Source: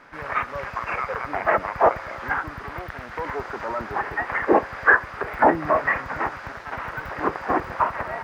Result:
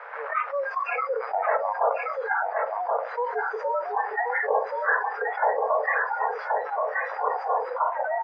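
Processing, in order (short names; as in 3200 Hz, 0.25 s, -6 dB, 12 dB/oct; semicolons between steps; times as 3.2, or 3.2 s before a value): LPF 1600 Hz 12 dB/oct; spectral noise reduction 22 dB; Chebyshev high-pass 440 Hz, order 8; echo 1.077 s -10 dB; fast leveller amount 70%; gain -6.5 dB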